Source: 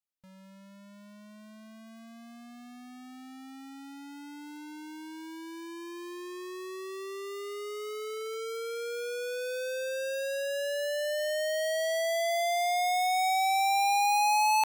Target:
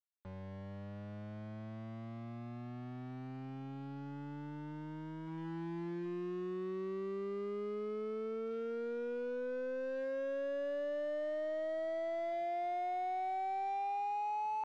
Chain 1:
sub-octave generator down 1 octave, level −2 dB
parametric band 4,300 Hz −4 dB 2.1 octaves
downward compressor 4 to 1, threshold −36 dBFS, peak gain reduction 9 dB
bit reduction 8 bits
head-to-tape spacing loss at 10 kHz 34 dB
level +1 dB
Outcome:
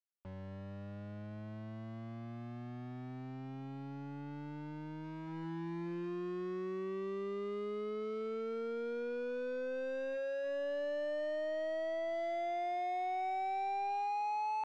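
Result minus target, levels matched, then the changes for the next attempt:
4,000 Hz band +4.0 dB
change: parametric band 4,300 Hz −13 dB 2.1 octaves

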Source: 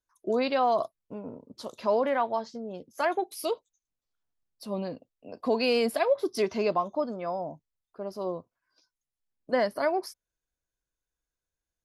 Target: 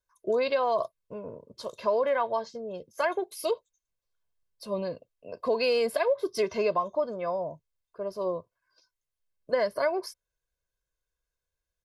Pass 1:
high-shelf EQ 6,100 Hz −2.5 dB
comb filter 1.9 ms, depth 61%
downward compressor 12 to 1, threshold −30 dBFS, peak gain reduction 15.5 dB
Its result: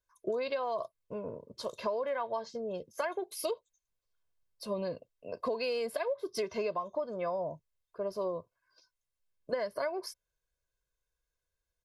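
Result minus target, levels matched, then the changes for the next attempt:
downward compressor: peak gain reduction +8.5 dB
change: downward compressor 12 to 1, threshold −21 dBFS, peak gain reduction 7.5 dB

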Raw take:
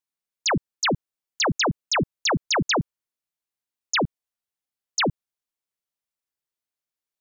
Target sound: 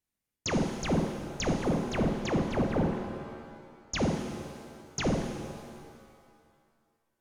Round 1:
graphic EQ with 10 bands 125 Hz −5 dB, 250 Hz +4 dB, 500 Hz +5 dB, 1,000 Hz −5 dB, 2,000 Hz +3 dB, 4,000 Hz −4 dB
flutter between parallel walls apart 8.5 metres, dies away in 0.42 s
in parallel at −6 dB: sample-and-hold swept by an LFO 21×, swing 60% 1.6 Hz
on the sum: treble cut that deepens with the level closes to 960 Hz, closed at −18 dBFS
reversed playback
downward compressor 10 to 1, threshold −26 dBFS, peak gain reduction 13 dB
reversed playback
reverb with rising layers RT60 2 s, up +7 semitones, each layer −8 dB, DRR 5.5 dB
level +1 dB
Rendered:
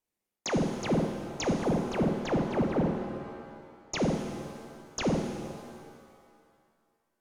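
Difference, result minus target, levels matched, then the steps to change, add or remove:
sample-and-hold swept by an LFO: distortion −29 dB
change: sample-and-hold swept by an LFO 78×, swing 60% 1.6 Hz

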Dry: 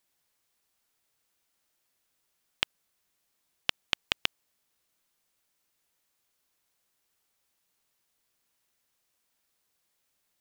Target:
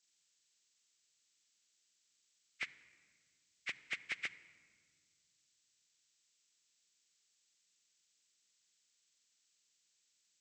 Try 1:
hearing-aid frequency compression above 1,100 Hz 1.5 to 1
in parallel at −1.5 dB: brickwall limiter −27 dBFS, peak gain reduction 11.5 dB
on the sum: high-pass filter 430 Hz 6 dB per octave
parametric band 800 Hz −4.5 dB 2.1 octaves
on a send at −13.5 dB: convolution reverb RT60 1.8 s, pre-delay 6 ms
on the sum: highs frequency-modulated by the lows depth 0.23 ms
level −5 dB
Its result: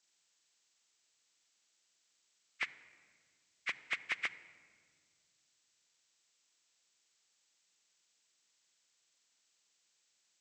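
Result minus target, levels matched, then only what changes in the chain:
1,000 Hz band +4.5 dB
change: parametric band 800 Hz −15.5 dB 2.1 octaves

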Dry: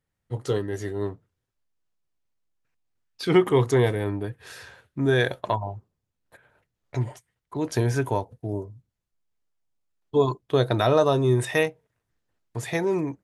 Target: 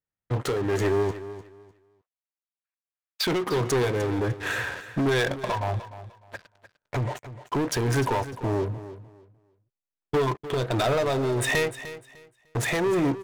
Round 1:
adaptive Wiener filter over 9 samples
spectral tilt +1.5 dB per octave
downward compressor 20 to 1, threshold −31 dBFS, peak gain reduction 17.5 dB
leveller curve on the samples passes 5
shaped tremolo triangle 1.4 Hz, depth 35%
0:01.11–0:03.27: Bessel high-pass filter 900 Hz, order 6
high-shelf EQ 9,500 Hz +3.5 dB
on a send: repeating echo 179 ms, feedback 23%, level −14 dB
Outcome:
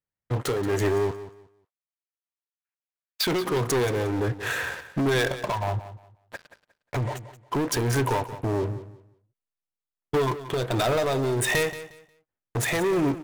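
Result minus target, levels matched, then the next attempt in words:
echo 122 ms early; 8,000 Hz band +2.5 dB
adaptive Wiener filter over 9 samples
spectral tilt +1.5 dB per octave
downward compressor 20 to 1, threshold −31 dBFS, peak gain reduction 17.5 dB
leveller curve on the samples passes 5
shaped tremolo triangle 1.4 Hz, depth 35%
0:01.11–0:03.27: Bessel high-pass filter 900 Hz, order 6
high-shelf EQ 9,500 Hz −4 dB
on a send: repeating echo 301 ms, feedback 23%, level −14 dB

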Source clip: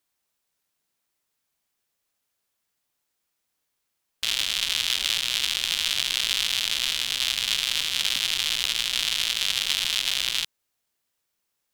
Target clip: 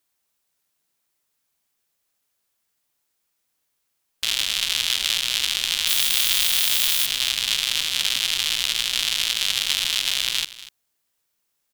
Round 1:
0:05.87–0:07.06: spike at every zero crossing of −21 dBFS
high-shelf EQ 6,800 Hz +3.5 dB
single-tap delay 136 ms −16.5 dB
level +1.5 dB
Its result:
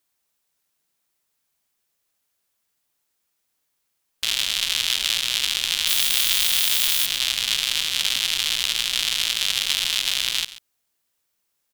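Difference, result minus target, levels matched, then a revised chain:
echo 105 ms early
0:05.87–0:07.06: spike at every zero crossing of −21 dBFS
high-shelf EQ 6,800 Hz +3.5 dB
single-tap delay 241 ms −16.5 dB
level +1.5 dB

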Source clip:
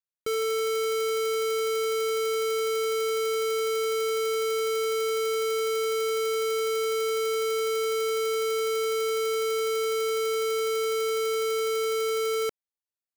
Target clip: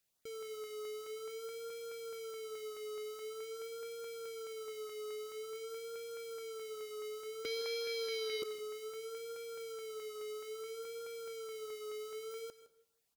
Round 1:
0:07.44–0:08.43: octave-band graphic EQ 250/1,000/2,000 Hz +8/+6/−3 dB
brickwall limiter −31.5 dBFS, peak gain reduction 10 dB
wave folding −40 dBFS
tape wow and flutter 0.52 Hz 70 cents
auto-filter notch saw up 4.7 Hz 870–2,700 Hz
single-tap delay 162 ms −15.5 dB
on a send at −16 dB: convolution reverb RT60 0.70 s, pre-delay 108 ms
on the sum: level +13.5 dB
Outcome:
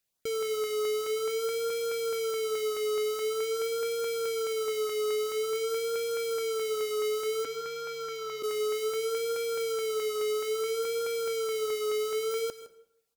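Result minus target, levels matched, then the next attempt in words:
wave folding: distortion −12 dB
0:07.44–0:08.43: octave-band graphic EQ 250/1,000/2,000 Hz +8/+6/−3 dB
brickwall limiter −31.5 dBFS, peak gain reduction 10 dB
wave folding −47.5 dBFS
tape wow and flutter 0.52 Hz 70 cents
auto-filter notch saw up 4.7 Hz 870–2,700 Hz
single-tap delay 162 ms −15.5 dB
on a send at −16 dB: convolution reverb RT60 0.70 s, pre-delay 108 ms
on the sum: level +13.5 dB

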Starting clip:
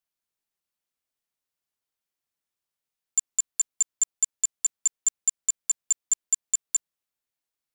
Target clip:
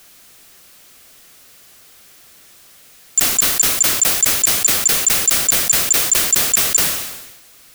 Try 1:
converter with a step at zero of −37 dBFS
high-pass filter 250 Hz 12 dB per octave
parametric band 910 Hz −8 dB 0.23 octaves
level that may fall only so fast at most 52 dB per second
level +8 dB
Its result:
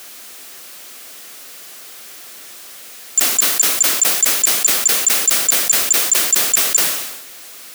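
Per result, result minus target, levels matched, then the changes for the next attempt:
converter with a step at zero: distortion +9 dB; 250 Hz band −2.5 dB
change: converter with a step at zero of −46.5 dBFS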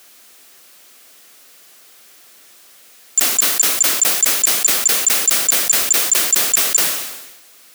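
250 Hz band −3.0 dB
remove: high-pass filter 250 Hz 12 dB per octave

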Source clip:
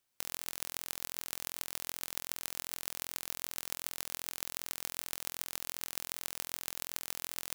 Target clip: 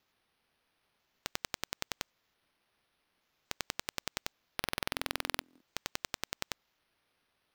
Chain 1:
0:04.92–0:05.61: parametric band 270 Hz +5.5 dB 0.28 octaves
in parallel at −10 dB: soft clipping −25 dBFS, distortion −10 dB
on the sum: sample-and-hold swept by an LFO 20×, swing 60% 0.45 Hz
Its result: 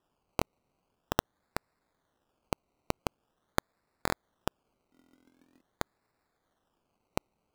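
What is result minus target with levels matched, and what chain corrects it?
sample-and-hold swept by an LFO: distortion +9 dB
0:04.92–0:05.61: parametric band 270 Hz +5.5 dB 0.28 octaves
in parallel at −10 dB: soft clipping −25 dBFS, distortion −10 dB
on the sum: sample-and-hold swept by an LFO 5×, swing 60% 0.45 Hz

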